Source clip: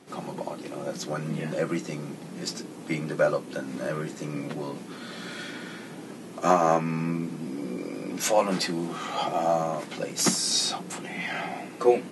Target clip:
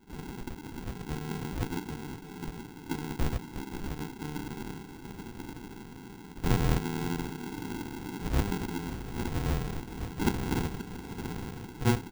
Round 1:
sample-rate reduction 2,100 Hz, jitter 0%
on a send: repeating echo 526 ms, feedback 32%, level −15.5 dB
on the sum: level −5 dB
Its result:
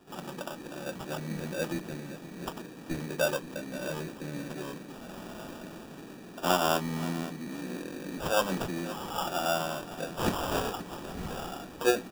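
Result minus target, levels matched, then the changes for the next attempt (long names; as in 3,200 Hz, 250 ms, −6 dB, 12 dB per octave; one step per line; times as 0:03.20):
sample-rate reduction: distortion −24 dB
change: sample-rate reduction 600 Hz, jitter 0%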